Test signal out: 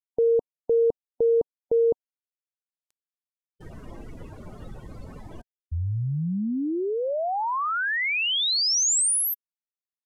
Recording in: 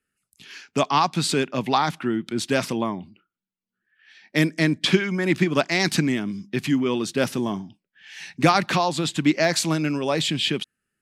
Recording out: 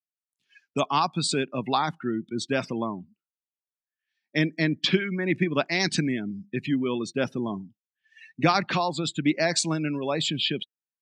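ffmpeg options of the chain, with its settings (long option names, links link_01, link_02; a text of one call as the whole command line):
ffmpeg -i in.wav -af "lowpass=9600,afftdn=noise_reduction=28:noise_floor=-31,highshelf=frequency=5700:gain=9,volume=-4dB" out.wav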